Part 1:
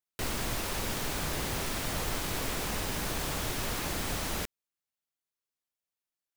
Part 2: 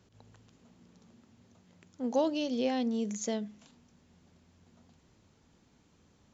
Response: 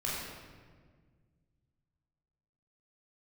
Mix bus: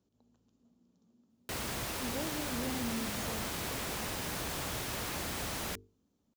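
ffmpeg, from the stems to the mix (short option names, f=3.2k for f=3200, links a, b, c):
-filter_complex "[0:a]highpass=52,bandreject=f=50:t=h:w=6,bandreject=f=100:t=h:w=6,bandreject=f=150:t=h:w=6,bandreject=f=200:t=h:w=6,bandreject=f=250:t=h:w=6,bandreject=f=300:t=h:w=6,bandreject=f=350:t=h:w=6,bandreject=f=400:t=h:w=6,bandreject=f=450:t=h:w=6,adelay=1300,volume=-3dB[a];[1:a]equalizer=f=125:t=o:w=1:g=-6,equalizer=f=250:t=o:w=1:g=9,equalizer=f=2k:t=o:w=1:g=-10,volume=-15dB,asplit=2[b][c];[c]volume=-14.5dB[d];[2:a]atrim=start_sample=2205[e];[d][e]afir=irnorm=-1:irlink=0[f];[a][b][f]amix=inputs=3:normalize=0,asoftclip=type=hard:threshold=-30dB"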